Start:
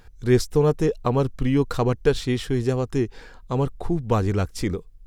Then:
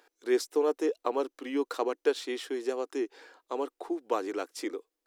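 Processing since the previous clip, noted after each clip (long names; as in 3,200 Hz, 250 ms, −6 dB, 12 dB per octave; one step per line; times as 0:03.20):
elliptic high-pass filter 300 Hz, stop band 50 dB
level −5.5 dB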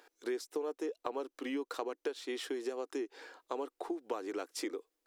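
downward compressor 6 to 1, threshold −36 dBFS, peak gain reduction 15.5 dB
level +1.5 dB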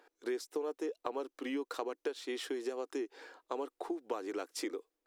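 one half of a high-frequency compander decoder only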